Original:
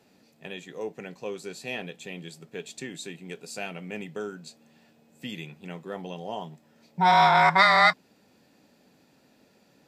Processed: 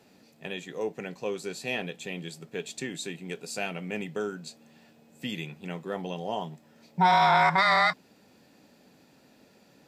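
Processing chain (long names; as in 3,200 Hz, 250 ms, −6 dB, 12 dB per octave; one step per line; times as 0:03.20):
brickwall limiter −15.5 dBFS, peak gain reduction 9 dB
level +2.5 dB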